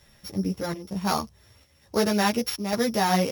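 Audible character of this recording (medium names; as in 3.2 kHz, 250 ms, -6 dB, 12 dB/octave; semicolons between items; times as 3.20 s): a buzz of ramps at a fixed pitch in blocks of 8 samples; chopped level 1.1 Hz, depth 60%, duty 80%; a quantiser's noise floor 12-bit, dither none; a shimmering, thickened sound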